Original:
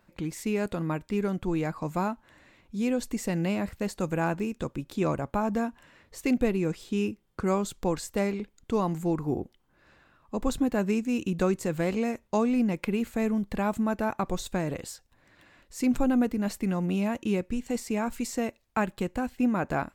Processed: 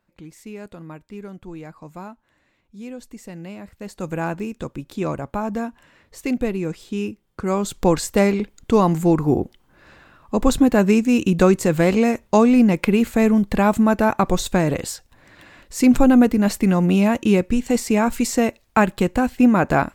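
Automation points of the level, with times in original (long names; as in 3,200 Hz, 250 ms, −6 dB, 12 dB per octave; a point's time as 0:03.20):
0:03.69 −7.5 dB
0:04.10 +2.5 dB
0:07.42 +2.5 dB
0:07.85 +11 dB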